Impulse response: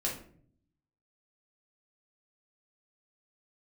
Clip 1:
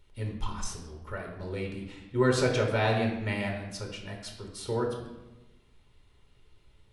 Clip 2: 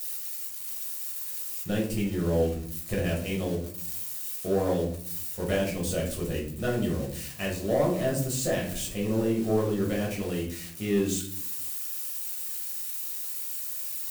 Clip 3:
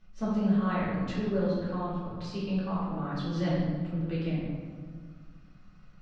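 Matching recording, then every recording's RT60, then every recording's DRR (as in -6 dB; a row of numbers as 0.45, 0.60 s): 2; 1.1, 0.55, 1.8 s; 0.5, -4.0, -10.5 dB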